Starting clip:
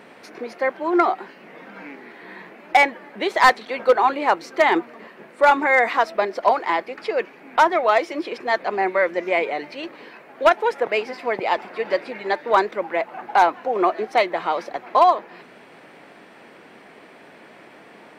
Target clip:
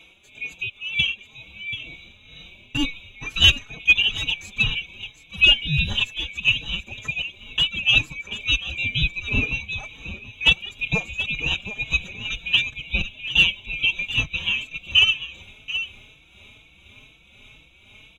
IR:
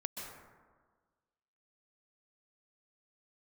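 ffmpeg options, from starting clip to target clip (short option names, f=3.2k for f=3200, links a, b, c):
-filter_complex "[0:a]afftfilt=real='real(if(lt(b,920),b+92*(1-2*mod(floor(b/92),2)),b),0)':imag='imag(if(lt(b,920),b+92*(1-2*mod(floor(b/92),2)),b),0)':win_size=2048:overlap=0.75,asubboost=boost=3:cutoff=180,dynaudnorm=f=760:g=7:m=14dB,tremolo=f=2:d=0.63,asplit=2[a][b];[b]aecho=0:1:732:0.251[c];[a][c]amix=inputs=2:normalize=0,asplit=2[d][e];[e]adelay=4.1,afreqshift=2.1[f];[d][f]amix=inputs=2:normalize=1"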